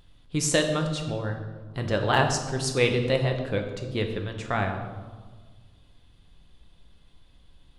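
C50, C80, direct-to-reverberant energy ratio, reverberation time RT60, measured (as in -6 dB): 7.0 dB, 8.5 dB, 3.5 dB, 1.5 s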